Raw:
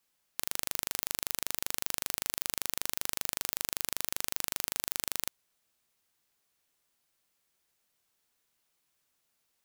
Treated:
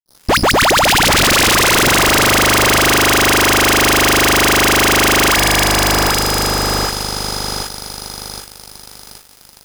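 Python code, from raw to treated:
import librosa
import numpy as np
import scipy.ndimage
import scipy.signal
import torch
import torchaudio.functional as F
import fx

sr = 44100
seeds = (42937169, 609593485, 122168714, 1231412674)

p1 = fx.tape_start_head(x, sr, length_s=1.28)
p2 = fx.high_shelf(p1, sr, hz=12000.0, db=-8.5)
p3 = fx.hum_notches(p2, sr, base_hz=60, count=5)
p4 = fx.dispersion(p3, sr, late='highs', ms=84.0, hz=870.0)
p5 = p4 + fx.echo_split(p4, sr, split_hz=1500.0, low_ms=775, high_ms=276, feedback_pct=52, wet_db=-6, dry=0)
p6 = p5 + 10.0 ** (-59.0 / 20.0) * np.sin(2.0 * np.pi * 5000.0 * np.arange(len(p5)) / sr)
p7 = fx.low_shelf(p6, sr, hz=230.0, db=8.5)
p8 = fx.fuzz(p7, sr, gain_db=56.0, gate_db=-58.0)
y = F.gain(torch.from_numpy(p8), 3.0).numpy()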